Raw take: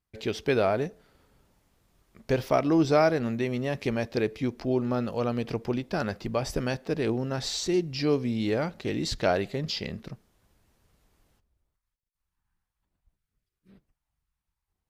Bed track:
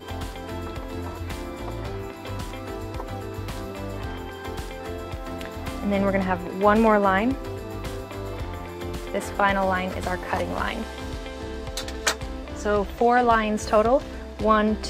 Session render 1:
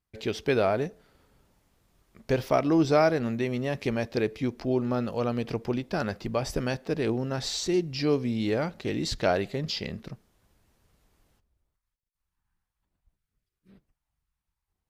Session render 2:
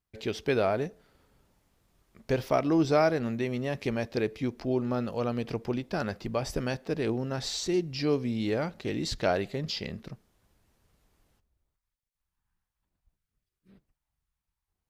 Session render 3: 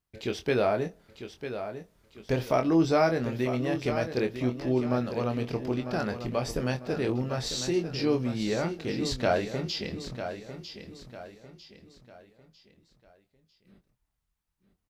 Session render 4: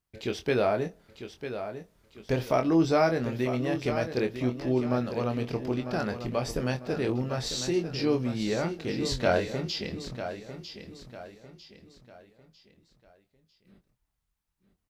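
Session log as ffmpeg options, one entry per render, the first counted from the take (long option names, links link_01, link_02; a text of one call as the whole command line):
ffmpeg -i in.wav -af anull out.wav
ffmpeg -i in.wav -af "volume=-2dB" out.wav
ffmpeg -i in.wav -filter_complex "[0:a]asplit=2[link_01][link_02];[link_02]adelay=24,volume=-7dB[link_03];[link_01][link_03]amix=inputs=2:normalize=0,aecho=1:1:949|1898|2847|3796:0.316|0.12|0.0457|0.0174" out.wav
ffmpeg -i in.wav -filter_complex "[0:a]asettb=1/sr,asplit=3[link_01][link_02][link_03];[link_01]atrim=end=8.984[link_04];[link_02]atrim=start=8.98:end=9.53,asetpts=PTS-STARTPTS,afade=type=in:duration=0.004:curve=qsin,afade=type=out:start_time=0.546:duration=0.004:curve=qsin,asplit=2[link_05][link_06];[link_06]adelay=22,volume=-5dB[link_07];[link_05][link_07]amix=inputs=2:normalize=0,atrim=end_sample=24255[link_08];[link_03]atrim=start=9.526[link_09];[link_04][link_08]acrossfade=duration=0.004:curve1=hsin:curve2=qsin[link_10];[link_10][link_09]acrossfade=duration=0.004:curve1=qsin:curve2=hsin" out.wav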